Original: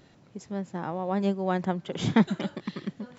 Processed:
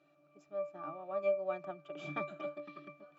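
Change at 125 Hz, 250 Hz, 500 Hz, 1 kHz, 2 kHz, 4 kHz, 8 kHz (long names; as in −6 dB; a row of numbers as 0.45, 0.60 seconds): −22.5 dB, −23.0 dB, −4.0 dB, −11.0 dB, −9.0 dB, −19.5 dB, can't be measured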